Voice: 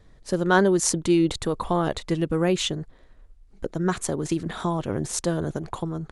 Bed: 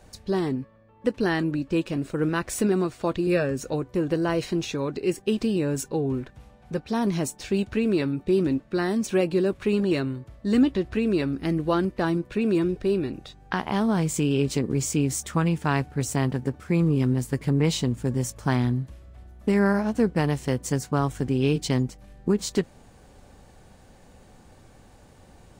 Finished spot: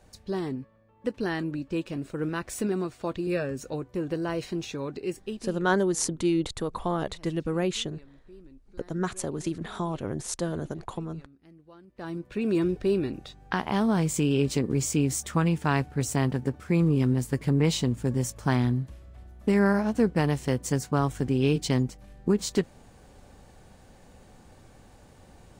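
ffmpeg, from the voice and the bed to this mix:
ffmpeg -i stem1.wav -i stem2.wav -filter_complex "[0:a]adelay=5150,volume=-5dB[link_01];[1:a]volume=22dB,afade=type=out:start_time=4.99:duration=0.66:silence=0.0707946,afade=type=in:start_time=11.87:duration=0.8:silence=0.0421697[link_02];[link_01][link_02]amix=inputs=2:normalize=0" out.wav

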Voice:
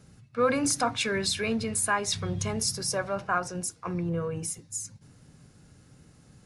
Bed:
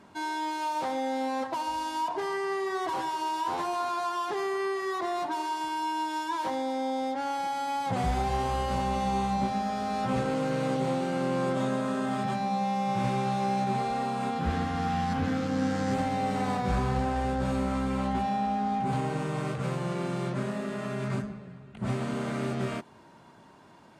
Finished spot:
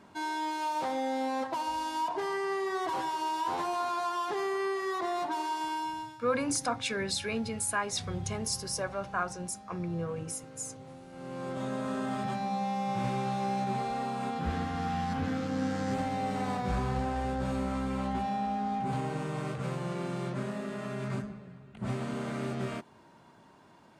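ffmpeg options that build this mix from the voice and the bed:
ffmpeg -i stem1.wav -i stem2.wav -filter_complex "[0:a]adelay=5850,volume=-4.5dB[link_01];[1:a]volume=15.5dB,afade=type=out:start_time=5.72:duration=0.46:silence=0.112202,afade=type=in:start_time=11.09:duration=0.85:silence=0.141254[link_02];[link_01][link_02]amix=inputs=2:normalize=0" out.wav

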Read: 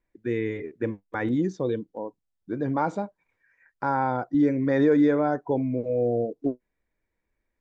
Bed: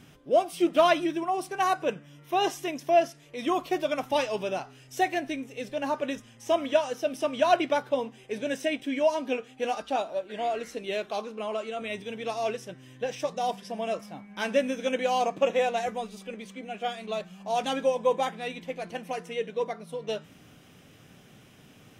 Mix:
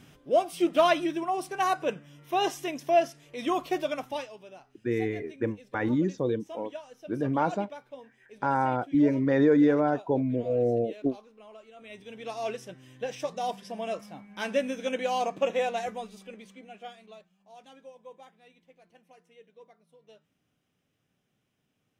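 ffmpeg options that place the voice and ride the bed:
ffmpeg -i stem1.wav -i stem2.wav -filter_complex "[0:a]adelay=4600,volume=-1dB[link_01];[1:a]volume=14dB,afade=type=out:start_time=3.79:duration=0.56:silence=0.149624,afade=type=in:start_time=11.73:duration=0.81:silence=0.177828,afade=type=out:start_time=15.75:duration=1.55:silence=0.0891251[link_02];[link_01][link_02]amix=inputs=2:normalize=0" out.wav

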